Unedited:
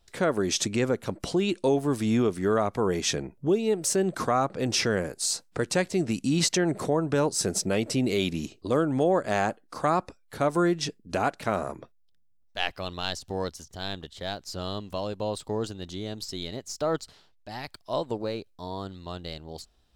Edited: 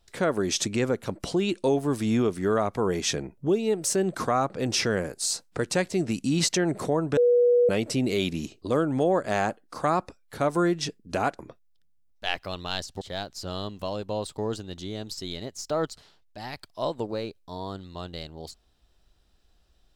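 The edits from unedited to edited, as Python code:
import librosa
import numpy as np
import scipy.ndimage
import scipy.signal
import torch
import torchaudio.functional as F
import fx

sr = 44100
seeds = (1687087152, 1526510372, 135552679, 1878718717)

y = fx.edit(x, sr, fx.bleep(start_s=7.17, length_s=0.52, hz=485.0, db=-16.0),
    fx.cut(start_s=11.39, length_s=0.33),
    fx.cut(start_s=13.34, length_s=0.78), tone=tone)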